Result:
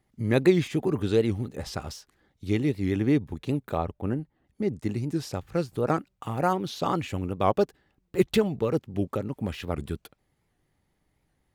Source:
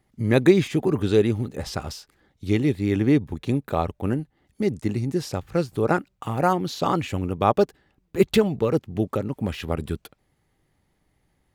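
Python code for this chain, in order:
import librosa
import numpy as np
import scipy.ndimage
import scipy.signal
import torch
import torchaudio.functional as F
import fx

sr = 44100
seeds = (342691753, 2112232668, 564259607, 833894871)

y = fx.high_shelf(x, sr, hz=2800.0, db=-9.0, at=(3.77, 4.82))
y = fx.record_warp(y, sr, rpm=78.0, depth_cents=160.0)
y = y * 10.0 ** (-4.0 / 20.0)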